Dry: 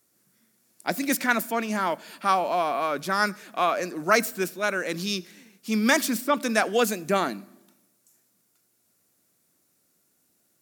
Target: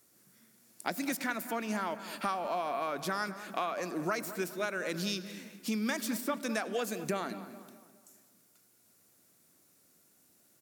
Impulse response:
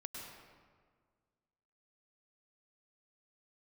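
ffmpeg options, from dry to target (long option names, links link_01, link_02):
-filter_complex "[0:a]acompressor=threshold=-34dB:ratio=6,asplit=2[link_01][link_02];[link_02]adelay=209,lowpass=frequency=2400:poles=1,volume=-13dB,asplit=2[link_03][link_04];[link_04]adelay=209,lowpass=frequency=2400:poles=1,volume=0.46,asplit=2[link_05][link_06];[link_06]adelay=209,lowpass=frequency=2400:poles=1,volume=0.46,asplit=2[link_07][link_08];[link_08]adelay=209,lowpass=frequency=2400:poles=1,volume=0.46,asplit=2[link_09][link_10];[link_10]adelay=209,lowpass=frequency=2400:poles=1,volume=0.46[link_11];[link_01][link_03][link_05][link_07][link_09][link_11]amix=inputs=6:normalize=0,asplit=2[link_12][link_13];[1:a]atrim=start_sample=2205[link_14];[link_13][link_14]afir=irnorm=-1:irlink=0,volume=-13dB[link_15];[link_12][link_15]amix=inputs=2:normalize=0,volume=1.5dB"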